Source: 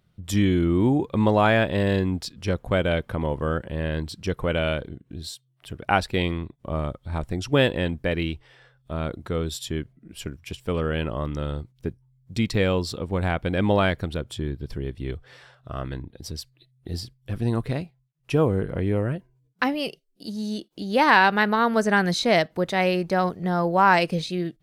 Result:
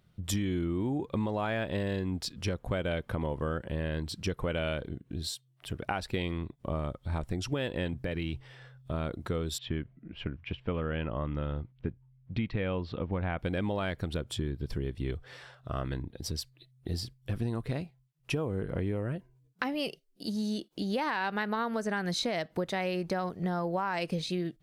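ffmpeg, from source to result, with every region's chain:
-filter_complex "[0:a]asettb=1/sr,asplit=3[a][b][c];[a]atrim=end=7.934[d];[b]atrim=start=7.93:end=8.94,asetpts=PTS-STARTPTS,afade=t=in:d=0.004:c=qsin,afade=t=out:st=1.006:d=0.004:c=qsin,equalizer=f=120:t=o:w=0.32:g=13.5,acompressor=threshold=-26dB:ratio=4:attack=3.2:release=140:knee=1:detection=peak[e];[c]atrim=start=8.936[f];[d][e]acrossfade=d=0.004:c1=hsin:c2=qsin[g];[g][f]acrossfade=d=0.004:c1=qsin:c2=hsin,asettb=1/sr,asplit=3[h][i][j];[h]atrim=end=9.584[k];[i]atrim=start=9.58:end=13.39,asetpts=PTS-STARTPTS,afade=t=in:d=0.004:c=qsin,afade=t=out:st=3.806:d=0.004:c=qsin,lowpass=f=3k:w=0.5412,lowpass=f=3k:w=1.3066,equalizer=f=400:t=o:w=0.38:g=-3.5[l];[j]atrim=start=13.386[m];[k][l]acrossfade=d=0.004:c1=hsin:c2=qsin[n];[n][m]acrossfade=d=0.004:c1=qsin:c2=hsin,alimiter=limit=-13.5dB:level=0:latency=1:release=224,acompressor=threshold=-29dB:ratio=4"

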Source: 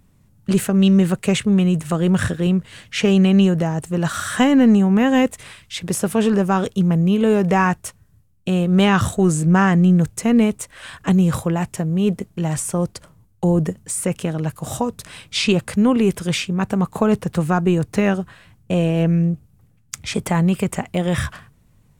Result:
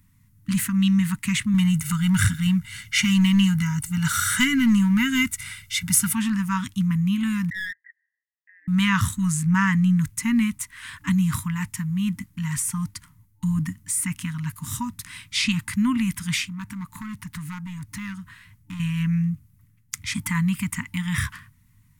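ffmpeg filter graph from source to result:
-filter_complex "[0:a]asettb=1/sr,asplit=3[a][b][c];[a]atrim=end=1.544[d];[b]atrim=start=1.54:end=6.13,asetpts=PTS-STARTPTS,afade=t=in:d=0.004:c=qsin,afade=t=out:st=4.586:d=0.004:c=qsin,highshelf=f=4.5k:g=5,aecho=1:1:1.4:0.94,atrim=end_sample=202419,aeval=exprs='clip(val(0),-1,0.316)':c=same[e];[c]atrim=start=6.126[f];[d][e]acrossfade=d=0.004:c1=hsin:c2=qsin[g];[g][f]acrossfade=d=0.004:c1=qsin:c2=hsin,asettb=1/sr,asplit=3[h][i][j];[h]atrim=end=7.504[k];[i]atrim=start=7.5:end=8.68,asetpts=PTS-STARTPTS,afade=t=in:d=0.004:c=qsin,afade=t=out:st=1.176:d=0.004:c=qsin,asuperpass=centerf=1800:order=8:qfactor=4.8,aeval=exprs='clip(val(0),-1,0.0251)':c=same[l];[j]atrim=start=8.676[m];[k][l]acrossfade=d=0.004:c1=hsin:c2=qsin[n];[n][m]acrossfade=d=0.004:c1=qsin:c2=hsin,asettb=1/sr,asplit=3[o][p][q];[o]atrim=end=16.484[r];[p]atrim=start=16.48:end=18.8,asetpts=PTS-STARTPTS,afade=t=in:d=0.004:c=qsin,afade=t=out:st=2.316:d=0.004:c=qsin,acompressor=threshold=-30dB:ratio=2:attack=3.2:release=140:knee=1:detection=peak,asoftclip=type=hard:threshold=-23dB[s];[q]atrim=start=18.796[t];[r][s]acrossfade=d=0.004:c1=hsin:c2=qsin[u];[u][t]acrossfade=d=0.004:c1=qsin:c2=hsin,equalizer=f=100:t=o:w=0.33:g=7,equalizer=f=2k:t=o:w=0.33:g=9,equalizer=f=8k:t=o:w=0.33:g=-3,afftfilt=real='re*(1-between(b*sr/4096,300,890))':imag='im*(1-between(b*sr/4096,300,890))':win_size=4096:overlap=0.75,highshelf=f=7.1k:g=11,volume=-5.5dB"

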